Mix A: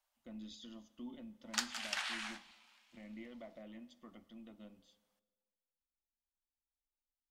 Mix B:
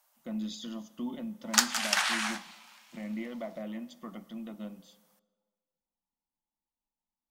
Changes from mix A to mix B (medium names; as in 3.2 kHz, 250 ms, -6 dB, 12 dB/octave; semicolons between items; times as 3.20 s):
background: add peaking EQ 5.9 kHz +2.5 dB 0.38 oct; master: remove FFT filter 100 Hz 0 dB, 170 Hz -19 dB, 260 Hz -10 dB, 650 Hz -13 dB, 1.1 kHz -14 dB, 2 kHz -11 dB, 2.9 kHz -9 dB, 5.8 kHz -12 dB, 9.3 kHz -16 dB, 15 kHz -21 dB